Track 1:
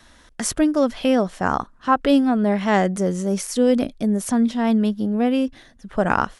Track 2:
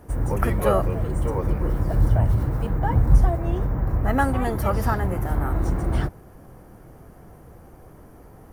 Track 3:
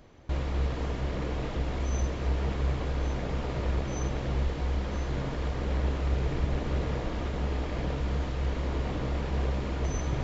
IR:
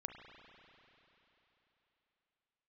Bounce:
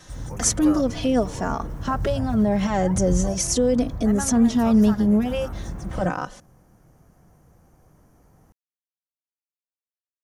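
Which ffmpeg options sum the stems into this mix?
-filter_complex "[0:a]equalizer=f=450:w=0.78:g=7.5,alimiter=limit=-12.5dB:level=0:latency=1:release=108,asplit=2[a][b];[b]adelay=3.4,afreqshift=-0.34[c];[a][c]amix=inputs=2:normalize=1,volume=1.5dB,asplit=2[d][e];[e]volume=-16dB[f];[1:a]volume=-10dB[g];[3:a]atrim=start_sample=2205[h];[f][h]afir=irnorm=-1:irlink=0[i];[d][g][i]amix=inputs=3:normalize=0,equalizer=f=160:t=o:w=0.67:g=4,equalizer=f=400:t=o:w=0.67:g=-4,equalizer=f=6.3k:t=o:w=0.67:g=11"

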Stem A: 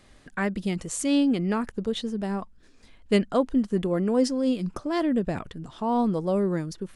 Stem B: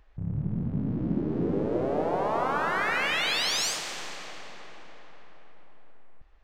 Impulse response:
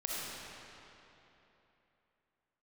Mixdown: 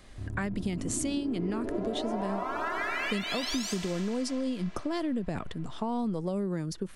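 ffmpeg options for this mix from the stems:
-filter_complex "[0:a]acrossover=split=220|3000[a][b][c];[b]acompressor=threshold=-28dB:ratio=6[d];[a][d][c]amix=inputs=3:normalize=0,volume=1.5dB[e];[1:a]aecho=1:1:3:0.93,volume=-4.5dB[f];[e][f]amix=inputs=2:normalize=0,acompressor=threshold=-28dB:ratio=6"

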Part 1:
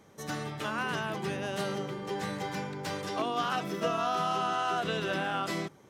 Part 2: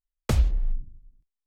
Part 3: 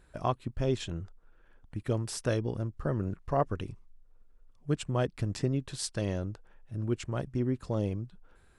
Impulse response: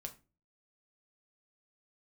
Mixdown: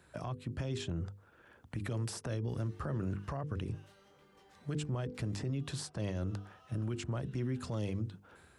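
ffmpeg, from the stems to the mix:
-filter_complex "[0:a]lowshelf=f=480:g=-11,acompressor=threshold=-41dB:ratio=6,flanger=delay=19.5:depth=6.3:speed=1.5,adelay=2300,volume=-16dB[a];[2:a]bandreject=f=50:t=h:w=6,bandreject=f=100:t=h:w=6,bandreject=f=150:t=h:w=6,bandreject=f=200:t=h:w=6,bandreject=f=250:t=h:w=6,bandreject=f=300:t=h:w=6,bandreject=f=350:t=h:w=6,bandreject=f=400:t=h:w=6,bandreject=f=450:t=h:w=6,bandreject=f=500:t=h:w=6,dynaudnorm=f=400:g=3:m=5dB,volume=2.5dB[b];[a][b]amix=inputs=2:normalize=0,highpass=f=73:w=0.5412,highpass=f=73:w=1.3066,acrossover=split=190|1300[c][d][e];[c]acompressor=threshold=-32dB:ratio=4[f];[d]acompressor=threshold=-36dB:ratio=4[g];[e]acompressor=threshold=-45dB:ratio=4[h];[f][g][h]amix=inputs=3:normalize=0,alimiter=level_in=4.5dB:limit=-24dB:level=0:latency=1:release=29,volume=-4.5dB"

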